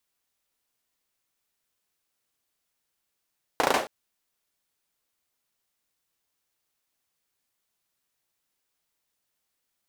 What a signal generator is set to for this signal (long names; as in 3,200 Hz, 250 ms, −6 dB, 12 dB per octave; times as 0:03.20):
synth clap length 0.27 s, bursts 5, apart 35 ms, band 600 Hz, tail 0.31 s